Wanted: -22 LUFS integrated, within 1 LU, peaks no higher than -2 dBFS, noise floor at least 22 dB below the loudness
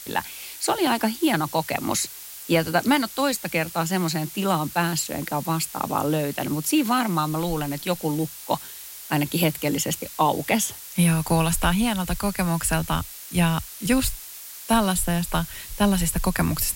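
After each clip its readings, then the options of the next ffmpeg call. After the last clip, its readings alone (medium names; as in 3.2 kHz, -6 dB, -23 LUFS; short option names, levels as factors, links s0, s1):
noise floor -40 dBFS; noise floor target -46 dBFS; loudness -24.0 LUFS; peak level -8.0 dBFS; loudness target -22.0 LUFS
-> -af "afftdn=nr=6:nf=-40"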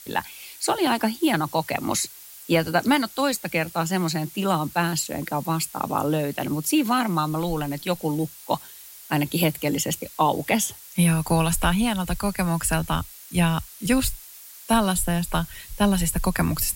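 noise floor -44 dBFS; noise floor target -46 dBFS
-> -af "afftdn=nr=6:nf=-44"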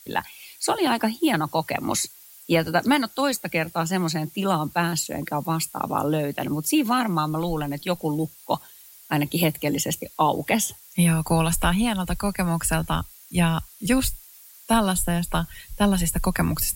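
noise floor -48 dBFS; loudness -24.0 LUFS; peak level -8.0 dBFS; loudness target -22.0 LUFS
-> -af "volume=1.26"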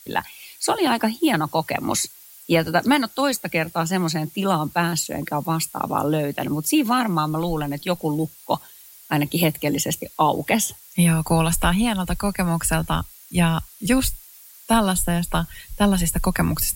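loudness -22.0 LUFS; peak level -6.0 dBFS; noise floor -46 dBFS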